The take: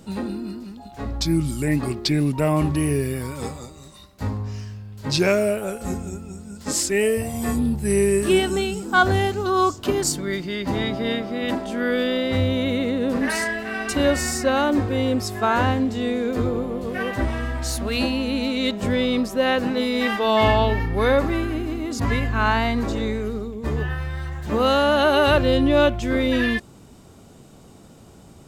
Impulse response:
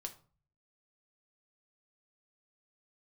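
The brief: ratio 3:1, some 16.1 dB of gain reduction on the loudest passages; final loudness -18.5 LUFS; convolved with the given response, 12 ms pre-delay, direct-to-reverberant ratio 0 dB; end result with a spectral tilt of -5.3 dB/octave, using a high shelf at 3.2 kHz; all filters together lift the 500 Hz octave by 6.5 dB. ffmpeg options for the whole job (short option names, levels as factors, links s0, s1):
-filter_complex "[0:a]equalizer=f=500:t=o:g=8,highshelf=f=3200:g=-3,acompressor=threshold=0.0282:ratio=3,asplit=2[s0][s1];[1:a]atrim=start_sample=2205,adelay=12[s2];[s1][s2]afir=irnorm=-1:irlink=0,volume=1.41[s3];[s0][s3]amix=inputs=2:normalize=0,volume=2.82"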